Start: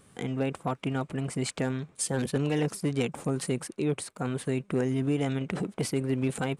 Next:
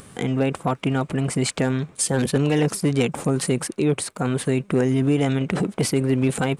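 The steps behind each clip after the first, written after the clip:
in parallel at −2 dB: brickwall limiter −27.5 dBFS, peak gain reduction 10 dB
on the sum: upward compression, threshold −46 dBFS
level +5.5 dB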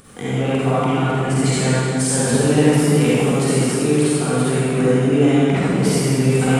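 convolution reverb RT60 2.6 s, pre-delay 38 ms, DRR −10 dB
level −4.5 dB

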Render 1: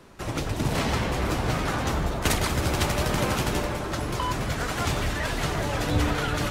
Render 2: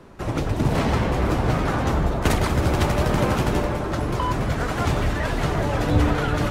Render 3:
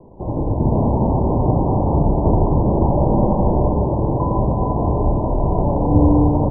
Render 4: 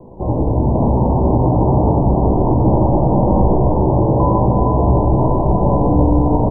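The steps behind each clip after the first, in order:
high-shelf EQ 2,000 Hz −10 dB; level +5.5 dB
Butterworth low-pass 1,000 Hz 96 dB per octave; on a send: single-tap delay 1,196 ms −7.5 dB; on the sum: four-comb reverb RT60 3.3 s, combs from 30 ms, DRR 1 dB; level +2.5 dB
brickwall limiter −12 dBFS, peak gain reduction 10.5 dB; double-tracking delay 16 ms −6 dB; single-tap delay 1,051 ms −5 dB; level +4.5 dB

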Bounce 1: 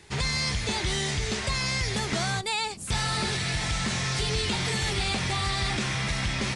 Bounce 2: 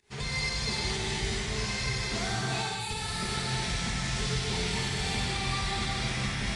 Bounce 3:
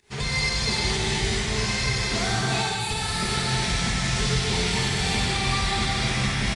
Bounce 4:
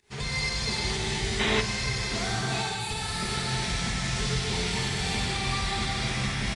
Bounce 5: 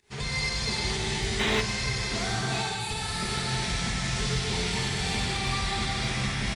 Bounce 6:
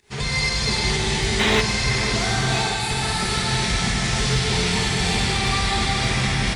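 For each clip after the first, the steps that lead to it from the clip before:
fake sidechain pumping 123 BPM, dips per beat 1, −18 dB, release 199 ms; reverb whose tail is shaped and stops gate 490 ms flat, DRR −5.5 dB; level −9 dB
single-tap delay 382 ms −15 dB; level +6.5 dB
gain on a spectral selection 0:01.40–0:01.61, 210–4,000 Hz +9 dB; level −4.5 dB
hard clipping −18.5 dBFS, distortion −26 dB
delay that swaps between a low-pass and a high-pass 502 ms, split 2,500 Hz, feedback 69%, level −8.5 dB; level +7 dB

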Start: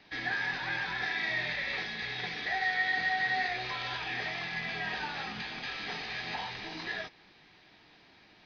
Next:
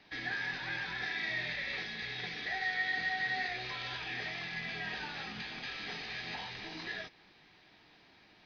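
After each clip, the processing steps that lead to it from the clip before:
dynamic equaliser 910 Hz, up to −5 dB, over −46 dBFS, Q 1.1
level −2.5 dB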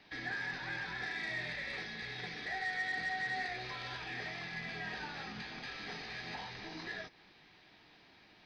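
soft clipping −25 dBFS, distortion −26 dB
dynamic equaliser 3,000 Hz, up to −6 dB, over −53 dBFS, Q 1.3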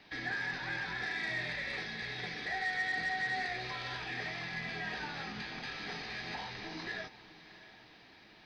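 feedback delay with all-pass diffusion 666 ms, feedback 43%, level −16 dB
level +2.5 dB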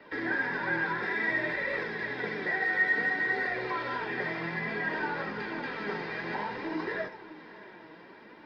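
convolution reverb RT60 0.35 s, pre-delay 74 ms, DRR 14 dB
flanger 0.57 Hz, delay 1.5 ms, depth 4.9 ms, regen +53%

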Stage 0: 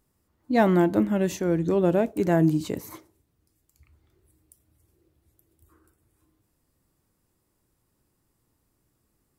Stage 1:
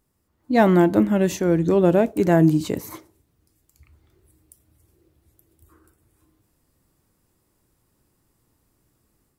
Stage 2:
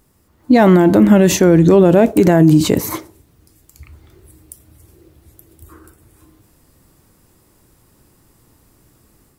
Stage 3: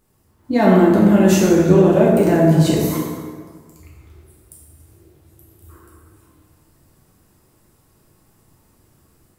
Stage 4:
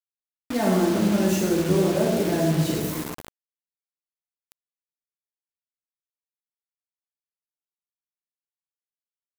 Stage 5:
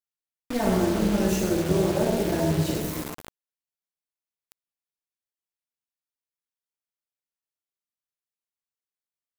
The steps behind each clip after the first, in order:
automatic gain control gain up to 5 dB
boost into a limiter +15 dB; level −1 dB
dense smooth reverb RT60 1.7 s, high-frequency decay 0.6×, DRR −5 dB; level −9 dB
bit reduction 4 bits; level −9 dB
amplitude modulation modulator 250 Hz, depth 50%; level +1 dB

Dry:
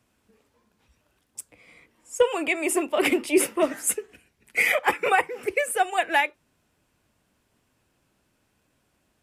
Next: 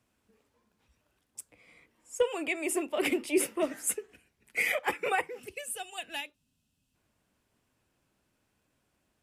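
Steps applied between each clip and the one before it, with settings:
gain on a spectral selection 0:05.39–0:06.95, 280–2,500 Hz −12 dB
dynamic equaliser 1,100 Hz, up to −4 dB, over −35 dBFS, Q 0.97
level −6 dB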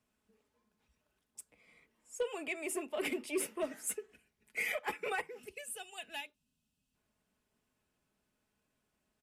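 comb filter 4.7 ms, depth 36%
soft clipping −19 dBFS, distortion −19 dB
level −6.5 dB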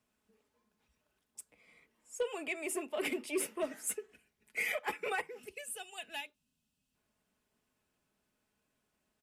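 low-shelf EQ 160 Hz −3.5 dB
level +1 dB

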